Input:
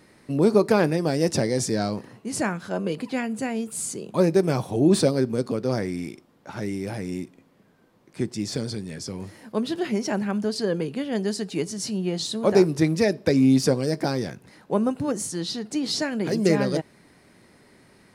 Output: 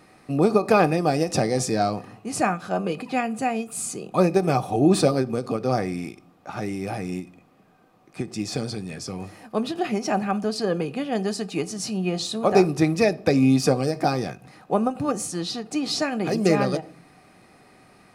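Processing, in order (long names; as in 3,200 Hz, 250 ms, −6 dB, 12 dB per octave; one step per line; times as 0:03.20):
hollow resonant body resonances 750/1,200/2,500 Hz, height 13 dB, ringing for 40 ms
on a send at −17 dB: convolution reverb RT60 0.50 s, pre-delay 6 ms
on the sum: every ending faded ahead of time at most 230 dB per second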